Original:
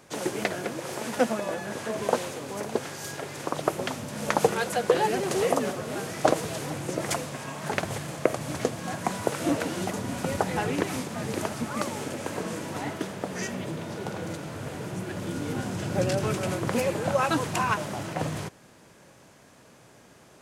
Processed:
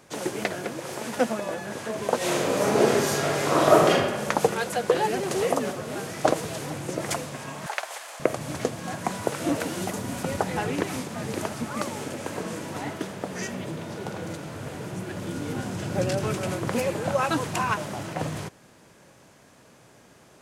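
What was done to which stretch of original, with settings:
0:02.17–0:03.88: thrown reverb, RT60 1.3 s, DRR −11 dB
0:07.66–0:08.20: high-pass filter 650 Hz 24 dB per octave
0:09.55–0:10.23: high-shelf EQ 8,900 Hz +6.5 dB

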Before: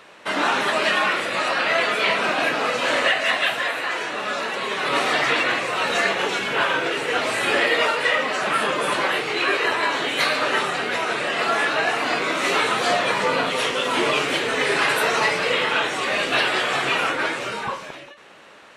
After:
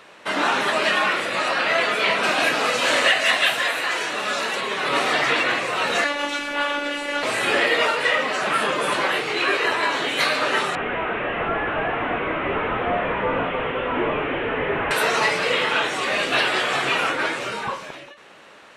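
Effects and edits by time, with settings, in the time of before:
0:02.23–0:04.61: high-shelf EQ 3,600 Hz +8 dB
0:06.04–0:07.23: phases set to zero 289 Hz
0:10.75–0:14.91: linear delta modulator 16 kbit/s, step −28.5 dBFS

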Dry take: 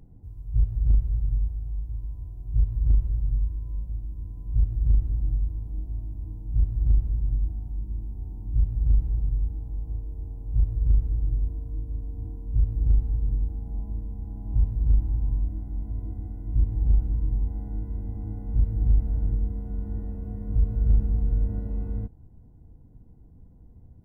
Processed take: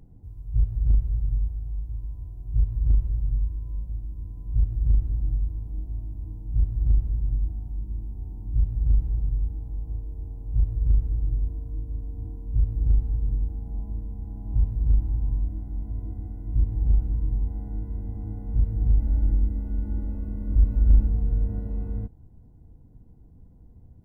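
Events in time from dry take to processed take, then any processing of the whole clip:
0:19.00–0:21.08: comb filter 3.5 ms, depth 80%

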